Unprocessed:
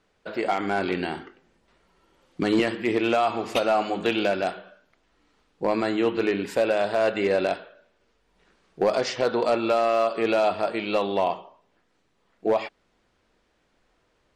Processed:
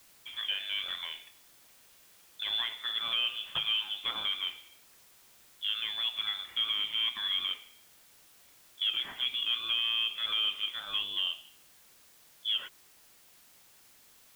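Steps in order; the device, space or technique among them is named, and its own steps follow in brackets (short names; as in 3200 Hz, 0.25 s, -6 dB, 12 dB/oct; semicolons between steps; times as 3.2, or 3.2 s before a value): scrambled radio voice (BPF 320–2900 Hz; inverted band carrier 3800 Hz; white noise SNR 24 dB); gain -8.5 dB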